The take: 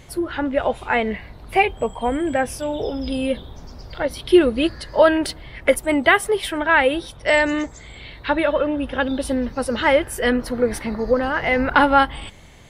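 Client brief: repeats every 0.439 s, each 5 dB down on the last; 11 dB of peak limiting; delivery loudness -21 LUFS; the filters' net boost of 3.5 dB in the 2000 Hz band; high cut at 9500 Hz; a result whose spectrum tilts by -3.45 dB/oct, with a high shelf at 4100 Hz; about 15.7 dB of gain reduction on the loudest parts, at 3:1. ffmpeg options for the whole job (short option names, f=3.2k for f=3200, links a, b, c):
-af "lowpass=9.5k,equalizer=f=2k:t=o:g=5.5,highshelf=f=4.1k:g=-6.5,acompressor=threshold=-30dB:ratio=3,alimiter=limit=-22.5dB:level=0:latency=1,aecho=1:1:439|878|1317|1756|2195|2634|3073:0.562|0.315|0.176|0.0988|0.0553|0.031|0.0173,volume=10.5dB"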